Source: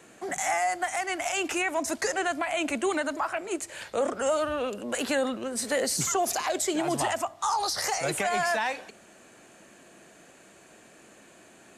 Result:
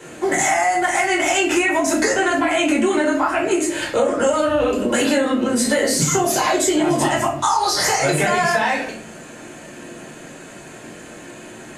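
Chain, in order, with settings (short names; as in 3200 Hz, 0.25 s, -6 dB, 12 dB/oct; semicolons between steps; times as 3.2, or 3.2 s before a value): reverb, pre-delay 5 ms, DRR -5 dB; compressor, threshold -21 dBFS, peak gain reduction 9.5 dB; high shelf 11000 Hz -3 dB; gain +6.5 dB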